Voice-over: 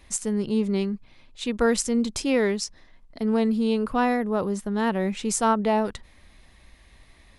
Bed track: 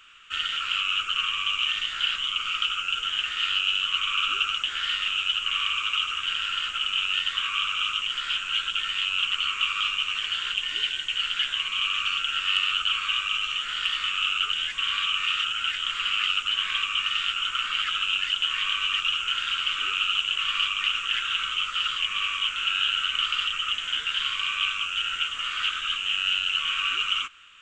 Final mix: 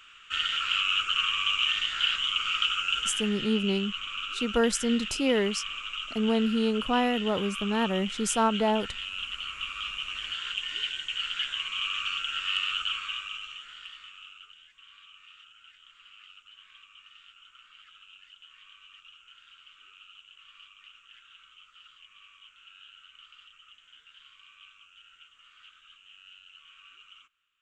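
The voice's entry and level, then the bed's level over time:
2.95 s, -3.0 dB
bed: 3 s -0.5 dB
3.44 s -10 dB
9.65 s -10 dB
10.58 s -5 dB
12.83 s -5 dB
14.64 s -27.5 dB

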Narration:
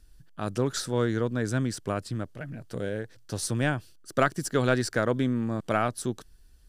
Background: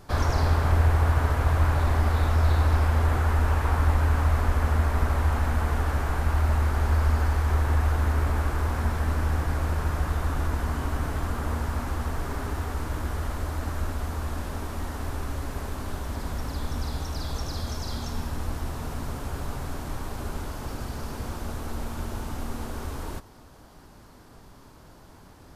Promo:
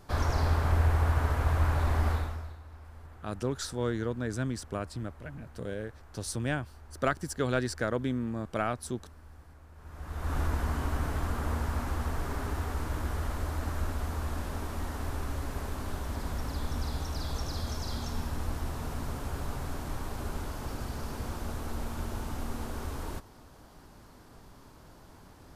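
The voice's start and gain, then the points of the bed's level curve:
2.85 s, -5.0 dB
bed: 2.12 s -4.5 dB
2.6 s -27 dB
9.72 s -27 dB
10.35 s -3 dB

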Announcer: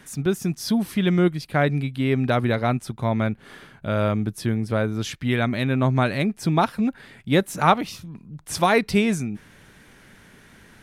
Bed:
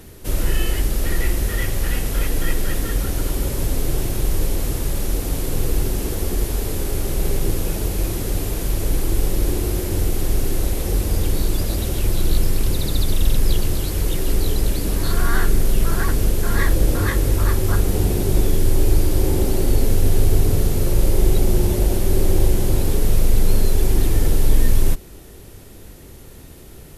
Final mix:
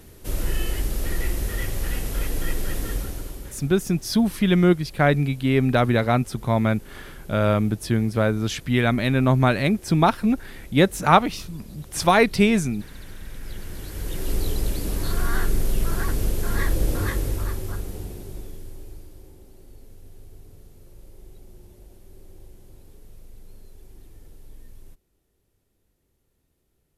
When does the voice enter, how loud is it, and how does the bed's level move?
3.45 s, +2.0 dB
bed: 2.93 s -5.5 dB
3.74 s -22 dB
13.27 s -22 dB
14.33 s -5.5 dB
17.08 s -5.5 dB
19.39 s -30.5 dB

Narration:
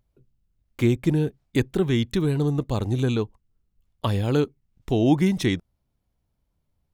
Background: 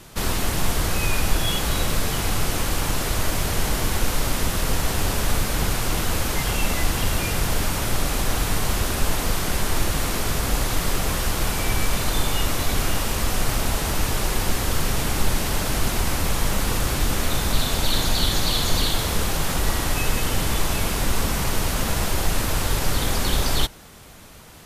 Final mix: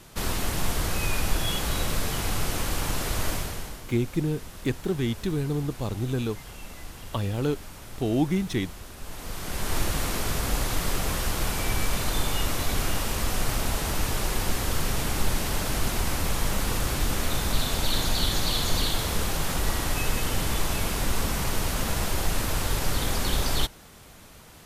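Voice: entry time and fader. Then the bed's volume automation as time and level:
3.10 s, -5.0 dB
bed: 3.32 s -4.5 dB
3.84 s -19 dB
8.97 s -19 dB
9.75 s -4 dB

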